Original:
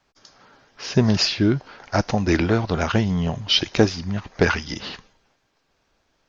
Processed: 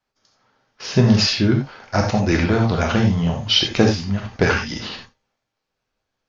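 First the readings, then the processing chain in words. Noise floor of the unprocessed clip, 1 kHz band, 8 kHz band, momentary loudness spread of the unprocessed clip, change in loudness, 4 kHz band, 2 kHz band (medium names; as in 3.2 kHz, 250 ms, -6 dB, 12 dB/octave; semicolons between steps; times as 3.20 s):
-69 dBFS, +2.5 dB, no reading, 12 LU, +3.0 dB, +2.5 dB, +2.5 dB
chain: gate -43 dBFS, range -13 dB; gated-style reverb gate 110 ms flat, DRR 1 dB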